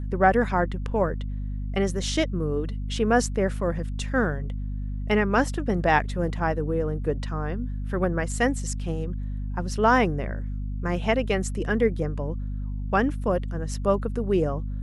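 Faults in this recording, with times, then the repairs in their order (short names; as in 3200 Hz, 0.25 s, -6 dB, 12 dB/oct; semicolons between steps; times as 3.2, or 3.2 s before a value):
hum 50 Hz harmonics 5 -30 dBFS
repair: de-hum 50 Hz, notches 5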